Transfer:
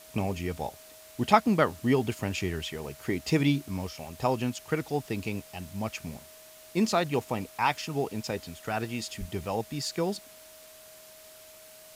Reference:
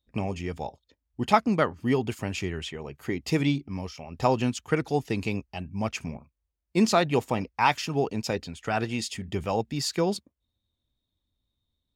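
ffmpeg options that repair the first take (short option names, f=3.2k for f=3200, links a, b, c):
-filter_complex "[0:a]bandreject=f=630:w=30,asplit=3[a][b][c];[a]afade=t=out:st=9.19:d=0.02[d];[b]highpass=f=140:w=0.5412,highpass=f=140:w=1.3066,afade=t=in:st=9.19:d=0.02,afade=t=out:st=9.31:d=0.02[e];[c]afade=t=in:st=9.31:d=0.02[f];[d][e][f]amix=inputs=3:normalize=0,afwtdn=0.0028,asetnsamples=n=441:p=0,asendcmd='4.11 volume volume 4dB',volume=0dB"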